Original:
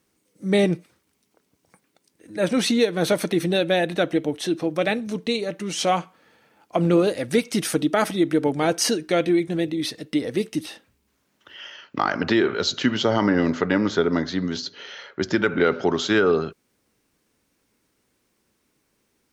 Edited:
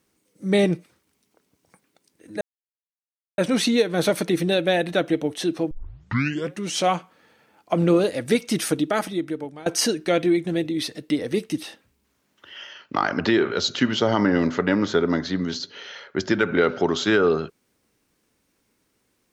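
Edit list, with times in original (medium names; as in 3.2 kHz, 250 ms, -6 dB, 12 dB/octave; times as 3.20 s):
2.41 s: insert silence 0.97 s
4.74 s: tape start 0.87 s
7.71–8.69 s: fade out, to -22.5 dB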